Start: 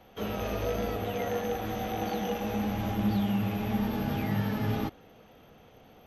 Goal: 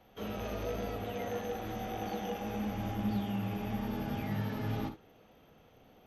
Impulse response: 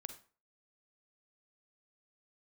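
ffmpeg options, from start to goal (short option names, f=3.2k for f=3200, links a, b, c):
-filter_complex "[0:a]asettb=1/sr,asplit=3[a][b][c];[a]atrim=end=1.734[d];[b]atrim=start=1.73:end=4.25,asetpts=PTS-STARTPTS,afade=t=in:d=0.004:c=qsin,afade=t=out:st=2.516:d=0.004:c=qsin,bandreject=f=4k:w=13[e];[c]atrim=start=4.246[f];[d][e]acrossfade=d=0.004:c1=hsin:c2=qsin[g];[g][f]acrossfade=d=0.004:c1=qsin:c2=hsin[h];[1:a]atrim=start_sample=2205,atrim=end_sample=3528[i];[h][i]afir=irnorm=-1:irlink=0,volume=-1.5dB"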